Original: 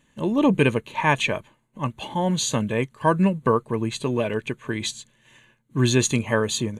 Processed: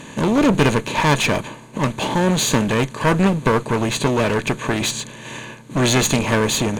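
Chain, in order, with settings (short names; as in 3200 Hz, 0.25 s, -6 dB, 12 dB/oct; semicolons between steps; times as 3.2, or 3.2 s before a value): per-bin compression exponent 0.6; one-sided clip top -25 dBFS; gain +4.5 dB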